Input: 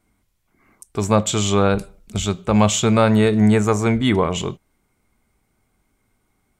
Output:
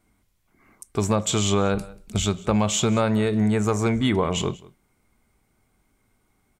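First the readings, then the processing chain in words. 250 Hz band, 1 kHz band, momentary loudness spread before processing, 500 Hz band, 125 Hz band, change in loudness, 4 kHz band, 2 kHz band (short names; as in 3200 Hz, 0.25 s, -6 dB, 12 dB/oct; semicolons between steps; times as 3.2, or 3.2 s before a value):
-5.0 dB, -5.5 dB, 12 LU, -5.0 dB, -4.5 dB, -5.0 dB, -2.5 dB, -5.5 dB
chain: compressor 6:1, threshold -17 dBFS, peak gain reduction 8 dB; hard clip -10.5 dBFS, distortion -31 dB; on a send: echo 0.186 s -22 dB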